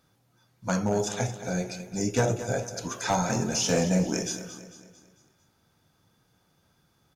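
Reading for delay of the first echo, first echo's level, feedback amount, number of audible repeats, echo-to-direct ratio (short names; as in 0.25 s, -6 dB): 0.224 s, -12.5 dB, 47%, 4, -11.5 dB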